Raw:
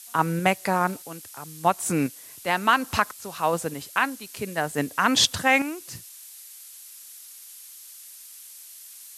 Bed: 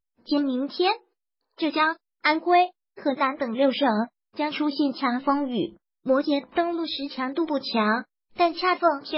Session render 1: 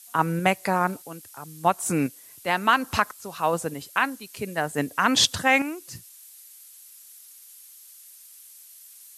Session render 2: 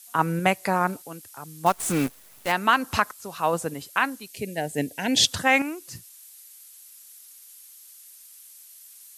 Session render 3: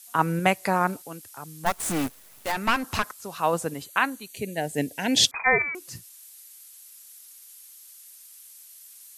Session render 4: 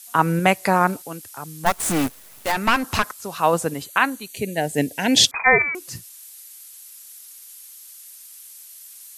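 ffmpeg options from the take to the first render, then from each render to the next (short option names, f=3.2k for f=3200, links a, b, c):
-af "afftdn=nr=6:nf=-45"
-filter_complex "[0:a]asettb=1/sr,asplit=3[a][b][c];[a]atrim=end=1.664[d];[b]atrim=start=1.66:end=2.52,asetpts=PTS-STARTPTS,afade=t=in:d=0.004:c=qsin,afade=t=out:st=0.856:d=0.004:c=qsin,acrusher=bits=6:dc=4:mix=0:aa=0.000001[e];[c]atrim=start=2.516[f];[d][e]acrossfade=d=0.004:c1=hsin:c2=qsin[g];[g][f]acrossfade=d=0.004:c1=qsin:c2=hsin,asettb=1/sr,asplit=3[h][i][j];[h]atrim=end=4.284[k];[i]atrim=start=4.28:end=5.27,asetpts=PTS-STARTPTS,afade=t=in:d=0.004:c=qsin,afade=t=out:st=0.986:d=0.004:c=qsin,asuperstop=centerf=1200:order=4:qfactor=1.1[l];[j]atrim=start=5.266[m];[k][l]acrossfade=d=0.004:c1=hsin:c2=qsin[n];[n][m]acrossfade=d=0.004:c1=qsin:c2=hsin"
-filter_complex "[0:a]asettb=1/sr,asplit=3[a][b][c];[a]atrim=end=1.584[d];[b]atrim=start=1.58:end=3.07,asetpts=PTS-STARTPTS,afade=t=in:d=0.004:c=qsin,afade=t=out:st=1.486:d=0.004:c=qsin,aeval=exprs='clip(val(0),-1,0.0422)':c=same[e];[c]atrim=start=3.066[f];[d][e]acrossfade=d=0.004:c1=hsin:c2=qsin[g];[g][f]acrossfade=d=0.004:c1=qsin:c2=hsin,asettb=1/sr,asplit=3[h][i][j];[h]atrim=end=3.844[k];[i]atrim=start=3.84:end=4.62,asetpts=PTS-STARTPTS,afade=t=in:d=0.004:c=qsin,afade=t=out:st=0.776:d=0.004:c=qsin,asuperstop=centerf=5200:order=8:qfactor=6.2[l];[j]atrim=start=4.616[m];[k][l]acrossfade=d=0.004:c1=hsin:c2=qsin[n];[n][m]acrossfade=d=0.004:c1=qsin:c2=hsin,asettb=1/sr,asplit=3[o][p][q];[o]atrim=end=5.314[r];[p]atrim=start=5.31:end=5.75,asetpts=PTS-STARTPTS,afade=t=in:d=0.004:c=qsin,afade=t=out:st=0.436:d=0.004:c=qsin,lowpass=f=2.2k:t=q:w=0.5098,lowpass=f=2.2k:t=q:w=0.6013,lowpass=f=2.2k:t=q:w=0.9,lowpass=f=2.2k:t=q:w=2.563,afreqshift=-2600[s];[q]atrim=start=5.746[t];[r][s]acrossfade=d=0.004:c1=hsin:c2=qsin[u];[u][t]acrossfade=d=0.004:c1=qsin:c2=hsin"
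-af "volume=5.5dB,alimiter=limit=-3dB:level=0:latency=1"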